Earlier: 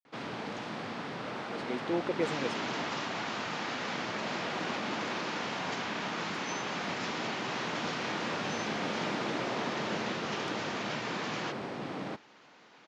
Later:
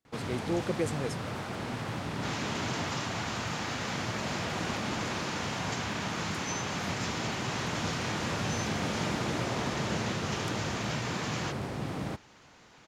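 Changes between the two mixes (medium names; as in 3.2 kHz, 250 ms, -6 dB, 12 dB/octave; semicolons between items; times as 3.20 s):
speech: entry -1.40 s; master: remove three-band isolator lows -23 dB, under 180 Hz, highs -22 dB, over 5.7 kHz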